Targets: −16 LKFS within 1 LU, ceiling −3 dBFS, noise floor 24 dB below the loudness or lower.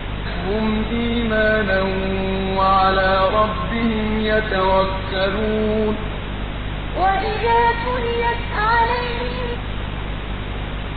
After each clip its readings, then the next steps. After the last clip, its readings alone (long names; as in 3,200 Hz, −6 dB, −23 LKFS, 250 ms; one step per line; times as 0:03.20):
mains hum 50 Hz; hum harmonics up to 250 Hz; level of the hum −25 dBFS; background noise floor −27 dBFS; target noise floor −44 dBFS; integrated loudness −20.0 LKFS; sample peak −4.0 dBFS; target loudness −16.0 LKFS
→ hum removal 50 Hz, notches 5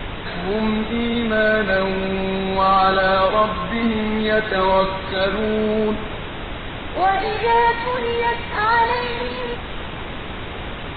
mains hum none found; background noise floor −30 dBFS; target noise floor −44 dBFS
→ noise reduction from a noise print 14 dB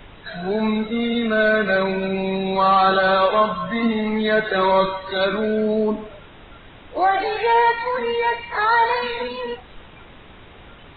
background noise floor −44 dBFS; integrated loudness −19.5 LKFS; sample peak −5.0 dBFS; target loudness −16.0 LKFS
→ level +3.5 dB
brickwall limiter −3 dBFS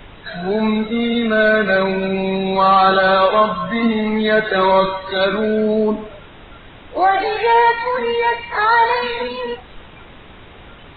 integrated loudness −16.0 LKFS; sample peak −3.0 dBFS; background noise floor −41 dBFS